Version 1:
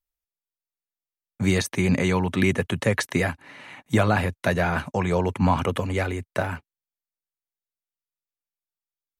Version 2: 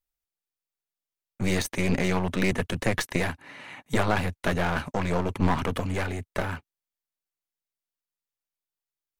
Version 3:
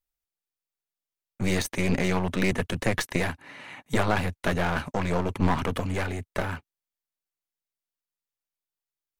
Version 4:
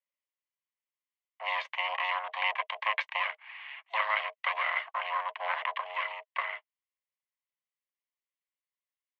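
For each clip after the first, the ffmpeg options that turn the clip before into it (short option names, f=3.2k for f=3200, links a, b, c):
-af "aeval=exprs='clip(val(0),-1,0.0237)':c=same"
-af anull
-af "aeval=exprs='val(0)*sin(2*PI*320*n/s)':c=same,highpass=f=480:w=0.5412,highpass=f=480:w=1.3066,equalizer=f=550:t=q:w=4:g=-8,equalizer=f=830:t=q:w=4:g=9,equalizer=f=1.2k:t=q:w=4:g=-7,equalizer=f=1.8k:t=q:w=4:g=10,equalizer=f=2.8k:t=q:w=4:g=6,lowpass=f=3k:w=0.5412,lowpass=f=3k:w=1.3066,afreqshift=220,volume=-2.5dB"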